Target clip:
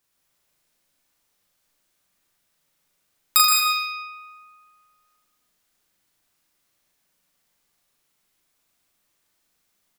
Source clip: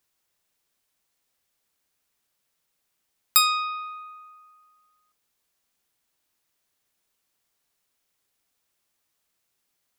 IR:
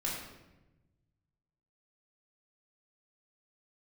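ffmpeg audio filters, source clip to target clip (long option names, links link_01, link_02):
-filter_complex "[0:a]aecho=1:1:37.9|81.63:0.794|0.447,asplit=2[link_01][link_02];[1:a]atrim=start_sample=2205,adelay=124[link_03];[link_02][link_03]afir=irnorm=-1:irlink=0,volume=-4.5dB[link_04];[link_01][link_04]amix=inputs=2:normalize=0"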